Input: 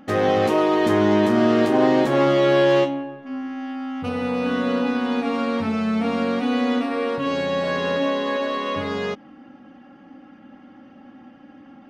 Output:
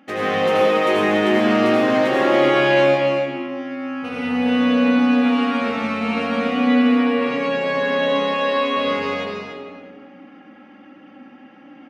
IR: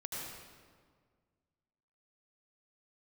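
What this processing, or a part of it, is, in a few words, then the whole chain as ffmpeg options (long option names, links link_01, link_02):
stadium PA: -filter_complex "[0:a]asettb=1/sr,asplit=3[link_01][link_02][link_03];[link_01]atrim=end=6.394[link_04];[link_02]atrim=start=6.39:end=8.02,asetpts=PTS-STARTPTS,afade=type=in:duration=0.004:curve=qsin,afade=type=out:start_time=1.626:duration=0.004:curve=qsin,highshelf=frequency=4300:gain=-6[link_05];[link_03]atrim=start=8.016[link_06];[link_04][link_05]acrossfade=duration=0.004:curve1=hsin:curve2=qsin[link_07];[link_07][link_06]acrossfade=duration=0.004:curve1=qsin:curve2=hsin,highpass=200,equalizer=frequency=2400:width_type=o:width=0.85:gain=8,aecho=1:1:239.1|282.8:0.282|0.398[link_08];[1:a]atrim=start_sample=2205[link_09];[link_08][link_09]afir=irnorm=-1:irlink=0"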